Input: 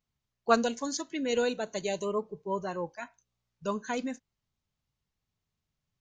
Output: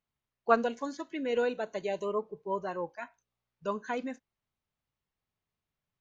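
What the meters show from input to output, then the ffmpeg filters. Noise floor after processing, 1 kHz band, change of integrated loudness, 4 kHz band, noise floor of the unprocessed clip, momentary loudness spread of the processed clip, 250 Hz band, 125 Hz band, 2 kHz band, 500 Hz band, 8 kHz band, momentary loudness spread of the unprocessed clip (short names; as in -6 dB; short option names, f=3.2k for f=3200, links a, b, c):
under -85 dBFS, 0.0 dB, -1.5 dB, -8.5 dB, under -85 dBFS, 13 LU, -3.5 dB, -5.0 dB, -1.0 dB, -0.5 dB, under -15 dB, 13 LU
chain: -filter_complex "[0:a]bass=f=250:g=-7,treble=f=4k:g=-11,acrossover=split=2800[a][b];[b]acompressor=threshold=-50dB:ratio=4:attack=1:release=60[c];[a][c]amix=inputs=2:normalize=0"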